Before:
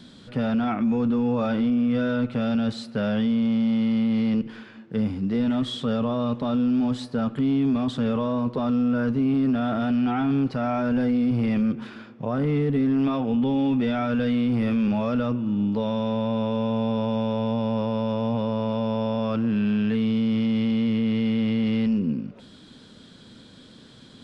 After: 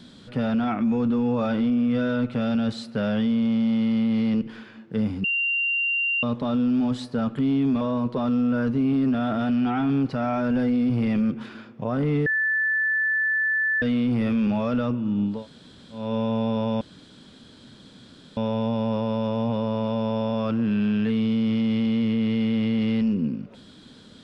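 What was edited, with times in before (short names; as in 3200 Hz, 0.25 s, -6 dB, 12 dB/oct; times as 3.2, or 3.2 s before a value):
5.24–6.23 bleep 2770 Hz -21 dBFS
7.81–8.22 cut
12.67–14.23 bleep 1750 Hz -20 dBFS
15.77–16.43 room tone, crossfade 0.24 s
17.22 insert room tone 1.56 s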